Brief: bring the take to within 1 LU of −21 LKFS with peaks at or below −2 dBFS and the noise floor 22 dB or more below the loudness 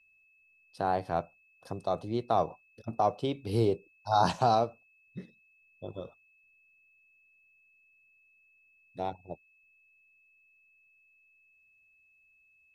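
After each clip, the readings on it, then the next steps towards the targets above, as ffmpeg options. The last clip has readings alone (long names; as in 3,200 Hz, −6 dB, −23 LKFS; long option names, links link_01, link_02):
interfering tone 2,600 Hz; level of the tone −63 dBFS; integrated loudness −31.0 LKFS; sample peak −12.5 dBFS; target loudness −21.0 LKFS
→ -af "bandreject=frequency=2600:width=30"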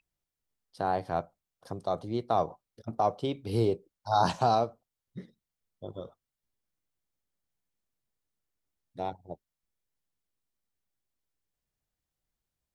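interfering tone none found; integrated loudness −30.5 LKFS; sample peak −12.5 dBFS; target loudness −21.0 LKFS
→ -af "volume=9.5dB"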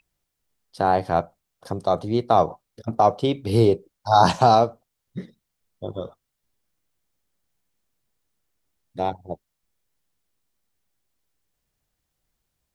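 integrated loudness −21.0 LKFS; sample peak −3.0 dBFS; background noise floor −80 dBFS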